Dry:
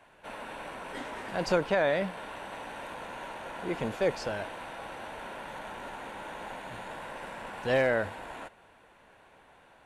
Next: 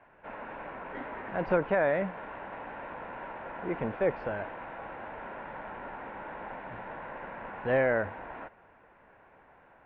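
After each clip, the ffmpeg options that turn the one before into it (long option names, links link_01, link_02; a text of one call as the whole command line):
ffmpeg -i in.wav -af "lowpass=frequency=2200:width=0.5412,lowpass=frequency=2200:width=1.3066" out.wav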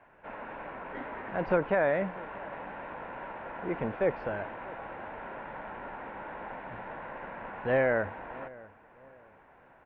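ffmpeg -i in.wav -filter_complex "[0:a]asplit=2[link_01][link_02];[link_02]adelay=642,lowpass=frequency=1600:poles=1,volume=-20dB,asplit=2[link_03][link_04];[link_04]adelay=642,lowpass=frequency=1600:poles=1,volume=0.32,asplit=2[link_05][link_06];[link_06]adelay=642,lowpass=frequency=1600:poles=1,volume=0.32[link_07];[link_01][link_03][link_05][link_07]amix=inputs=4:normalize=0" out.wav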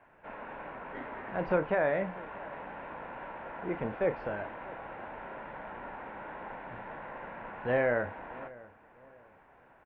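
ffmpeg -i in.wav -filter_complex "[0:a]asplit=2[link_01][link_02];[link_02]adelay=33,volume=-11dB[link_03];[link_01][link_03]amix=inputs=2:normalize=0,volume=-2dB" out.wav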